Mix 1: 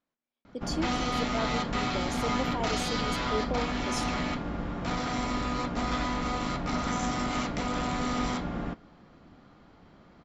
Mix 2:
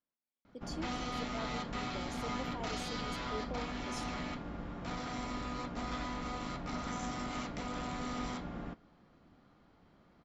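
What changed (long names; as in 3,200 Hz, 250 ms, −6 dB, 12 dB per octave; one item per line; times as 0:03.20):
speech −10.5 dB
background −9.0 dB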